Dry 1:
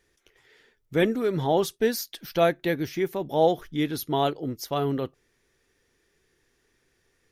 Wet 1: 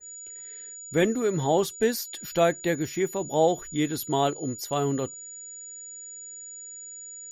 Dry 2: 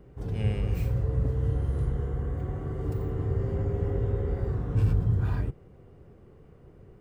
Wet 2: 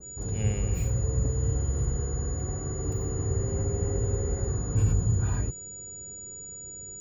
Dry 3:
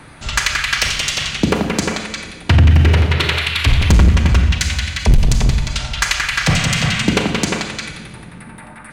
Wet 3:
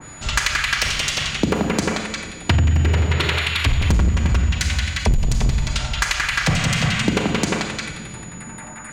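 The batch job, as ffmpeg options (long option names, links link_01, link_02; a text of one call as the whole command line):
ffmpeg -i in.wav -af "acompressor=threshold=-14dB:ratio=6,aeval=exprs='val(0)+0.0112*sin(2*PI*6900*n/s)':channel_layout=same,adynamicequalizer=threshold=0.0178:dfrequency=2100:dqfactor=0.7:tfrequency=2100:tqfactor=0.7:attack=5:release=100:ratio=0.375:range=1.5:mode=cutabove:tftype=highshelf" out.wav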